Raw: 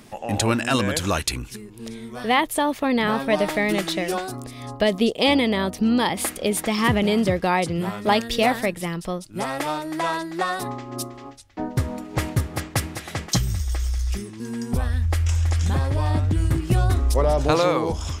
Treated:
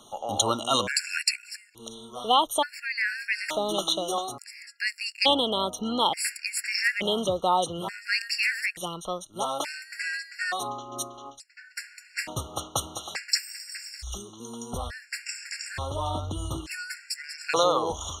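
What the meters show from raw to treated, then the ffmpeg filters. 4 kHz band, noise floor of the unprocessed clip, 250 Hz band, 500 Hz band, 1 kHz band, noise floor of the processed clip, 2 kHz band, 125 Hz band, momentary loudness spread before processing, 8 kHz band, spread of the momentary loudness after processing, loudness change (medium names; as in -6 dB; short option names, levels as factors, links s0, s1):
+1.0 dB, -41 dBFS, -13.0 dB, -7.0 dB, -3.0 dB, -53 dBFS, -2.0 dB, -16.5 dB, 12 LU, -1.0 dB, 14 LU, -5.0 dB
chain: -filter_complex "[0:a]crystalizer=i=2:c=0,acrossover=split=470 7500:gain=0.224 1 0.126[s0][s1][s2];[s0][s1][s2]amix=inputs=3:normalize=0,afftfilt=real='re*gt(sin(2*PI*0.57*pts/sr)*(1-2*mod(floor(b*sr/1024/1400),2)),0)':imag='im*gt(sin(2*PI*0.57*pts/sr)*(1-2*mod(floor(b*sr/1024/1400),2)),0)':win_size=1024:overlap=0.75"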